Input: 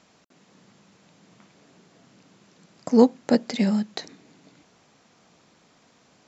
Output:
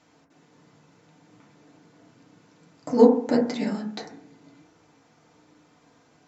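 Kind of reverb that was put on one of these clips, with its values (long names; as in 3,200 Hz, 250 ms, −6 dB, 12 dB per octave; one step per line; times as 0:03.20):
feedback delay network reverb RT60 0.56 s, low-frequency decay 1.05×, high-frequency decay 0.25×, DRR −3.5 dB
level −6 dB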